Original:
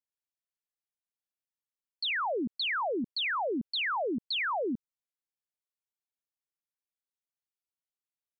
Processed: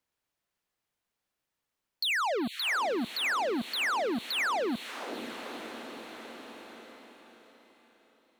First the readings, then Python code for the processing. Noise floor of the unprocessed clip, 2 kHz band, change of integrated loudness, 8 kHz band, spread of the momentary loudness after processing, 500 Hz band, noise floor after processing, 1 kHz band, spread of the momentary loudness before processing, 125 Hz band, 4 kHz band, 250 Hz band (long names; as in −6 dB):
below −85 dBFS, +2.5 dB, +0.5 dB, can't be measured, 17 LU, +1.5 dB, below −85 dBFS, +2.0 dB, 4 LU, +1.0 dB, +1.0 dB, +1.0 dB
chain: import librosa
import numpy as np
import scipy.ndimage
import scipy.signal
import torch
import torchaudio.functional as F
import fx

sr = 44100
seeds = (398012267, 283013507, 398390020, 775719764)

y = fx.high_shelf(x, sr, hz=3700.0, db=-10.0)
y = fx.leveller(y, sr, passes=3)
y = fx.echo_diffused(y, sr, ms=488, feedback_pct=43, wet_db=-16)
y = fx.band_squash(y, sr, depth_pct=70)